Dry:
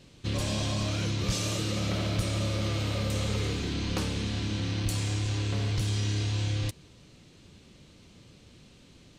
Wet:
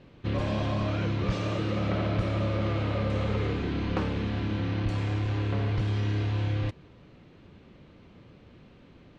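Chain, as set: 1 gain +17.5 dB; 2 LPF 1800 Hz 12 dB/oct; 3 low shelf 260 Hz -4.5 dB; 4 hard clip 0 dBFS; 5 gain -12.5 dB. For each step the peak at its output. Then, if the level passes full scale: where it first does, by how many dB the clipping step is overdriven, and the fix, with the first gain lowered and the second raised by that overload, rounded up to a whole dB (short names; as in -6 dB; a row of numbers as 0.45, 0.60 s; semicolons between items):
-2.0, -2.0, -3.5, -3.5, -16.0 dBFS; no overload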